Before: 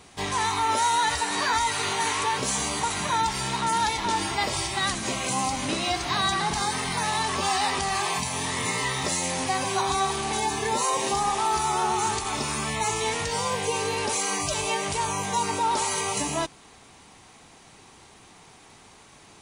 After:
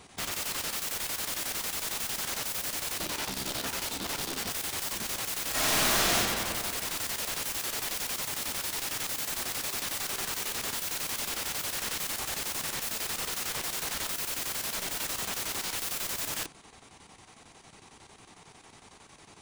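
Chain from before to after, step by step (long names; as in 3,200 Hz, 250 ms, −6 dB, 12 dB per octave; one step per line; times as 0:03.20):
0:02.99–0:04.50: octave-band graphic EQ 125/250/500/1,000/2,000/4,000/8,000 Hz −4/+11/−5/−8/−11/+4/−8 dB
wrap-around overflow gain 26.5 dB
square-wave tremolo 11 Hz, depth 60%, duty 75%
0:05.50–0:06.14: thrown reverb, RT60 2.2 s, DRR −10.5 dB
level −1.5 dB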